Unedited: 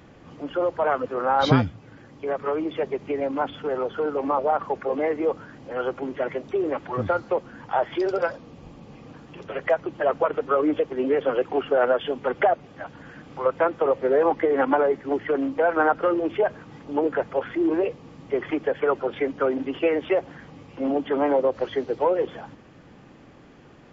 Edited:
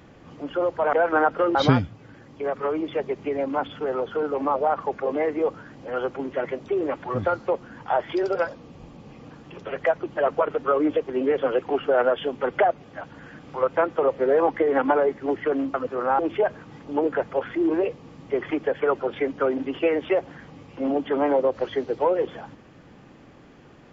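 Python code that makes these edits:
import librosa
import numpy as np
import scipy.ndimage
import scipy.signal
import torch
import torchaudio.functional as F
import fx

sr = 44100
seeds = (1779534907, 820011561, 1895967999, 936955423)

y = fx.edit(x, sr, fx.swap(start_s=0.93, length_s=0.45, other_s=15.57, other_length_s=0.62), tone=tone)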